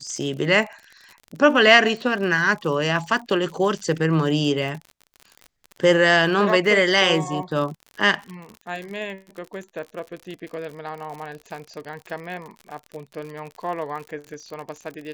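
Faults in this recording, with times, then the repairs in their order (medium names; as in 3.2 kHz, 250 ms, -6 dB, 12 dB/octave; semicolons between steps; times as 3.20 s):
crackle 53 per s -31 dBFS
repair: de-click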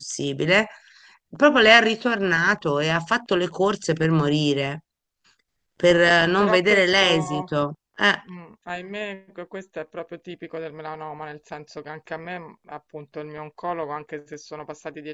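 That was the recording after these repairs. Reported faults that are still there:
nothing left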